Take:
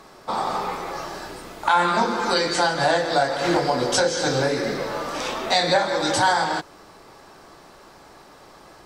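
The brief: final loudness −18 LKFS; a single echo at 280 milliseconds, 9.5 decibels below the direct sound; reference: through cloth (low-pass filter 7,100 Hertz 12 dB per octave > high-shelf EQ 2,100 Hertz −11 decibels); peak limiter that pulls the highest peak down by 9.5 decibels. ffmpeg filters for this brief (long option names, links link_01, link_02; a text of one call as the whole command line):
ffmpeg -i in.wav -af "alimiter=limit=-16dB:level=0:latency=1,lowpass=7100,highshelf=frequency=2100:gain=-11,aecho=1:1:280:0.335,volume=9.5dB" out.wav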